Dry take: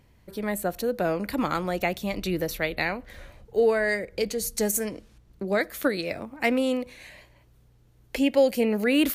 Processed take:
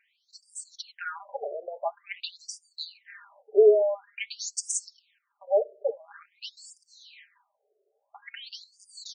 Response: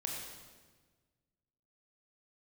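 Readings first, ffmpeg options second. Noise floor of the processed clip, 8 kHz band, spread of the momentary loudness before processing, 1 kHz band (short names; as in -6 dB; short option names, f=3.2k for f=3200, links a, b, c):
-78 dBFS, -0.5 dB, 12 LU, -7.5 dB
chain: -af "afreqshift=-25,aecho=1:1:5:0.83,afftfilt=real='re*between(b*sr/1024,510*pow(6700/510,0.5+0.5*sin(2*PI*0.48*pts/sr))/1.41,510*pow(6700/510,0.5+0.5*sin(2*PI*0.48*pts/sr))*1.41)':imag='im*between(b*sr/1024,510*pow(6700/510,0.5+0.5*sin(2*PI*0.48*pts/sr))/1.41,510*pow(6700/510,0.5+0.5*sin(2*PI*0.48*pts/sr))*1.41)':win_size=1024:overlap=0.75"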